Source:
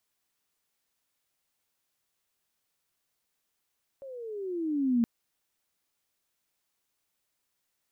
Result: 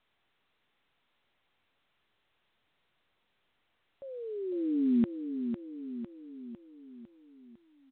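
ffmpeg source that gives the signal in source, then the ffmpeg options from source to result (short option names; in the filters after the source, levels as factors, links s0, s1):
-f lavfi -i "aevalsrc='pow(10,(-20.5+20*(t/1.02-1))/20)*sin(2*PI*557*1.02/(-15.5*log(2)/12)*(exp(-15.5*log(2)/12*t/1.02)-1))':d=1.02:s=44100"
-filter_complex "[0:a]adynamicequalizer=threshold=0.00794:dfrequency=140:dqfactor=1.8:tfrequency=140:tqfactor=1.8:attack=5:release=100:ratio=0.375:range=1.5:mode=boostabove:tftype=bell,asplit=2[s0][s1];[s1]aecho=0:1:503|1006|1509|2012|2515|3018:0.398|0.215|0.116|0.0627|0.0339|0.0183[s2];[s0][s2]amix=inputs=2:normalize=0" -ar 8000 -c:a pcm_mulaw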